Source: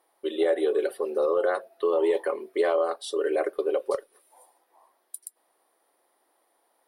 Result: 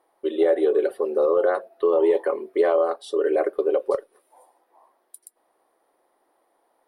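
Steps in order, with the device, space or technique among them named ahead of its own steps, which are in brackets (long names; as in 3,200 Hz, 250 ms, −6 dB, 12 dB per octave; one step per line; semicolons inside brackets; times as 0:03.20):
through cloth (high-shelf EQ 2,000 Hz −11 dB)
level +5 dB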